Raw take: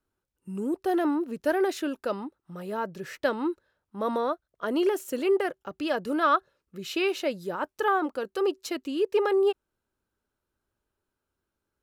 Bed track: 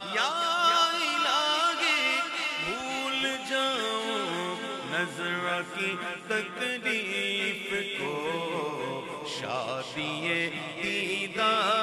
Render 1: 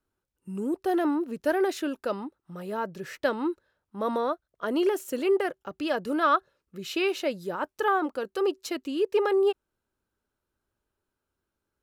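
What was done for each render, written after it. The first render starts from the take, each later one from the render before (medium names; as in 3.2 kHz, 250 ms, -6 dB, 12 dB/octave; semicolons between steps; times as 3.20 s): no audible change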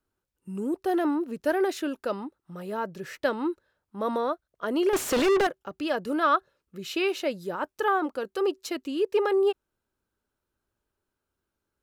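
4.93–5.47 s: overdrive pedal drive 34 dB, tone 2.6 kHz, clips at -16 dBFS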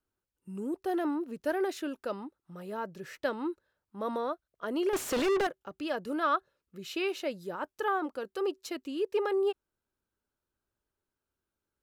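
trim -5.5 dB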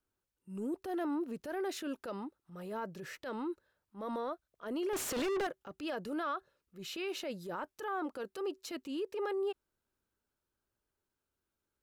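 peak limiter -29 dBFS, peak gain reduction 11.5 dB; transient shaper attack -7 dB, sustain +1 dB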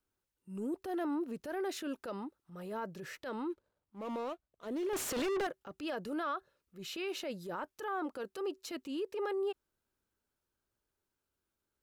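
3.50–4.92 s: median filter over 25 samples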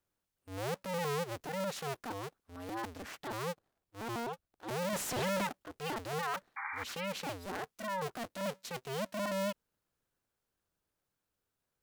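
cycle switcher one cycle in 2, inverted; 6.56–6.84 s: painted sound noise 780–2400 Hz -40 dBFS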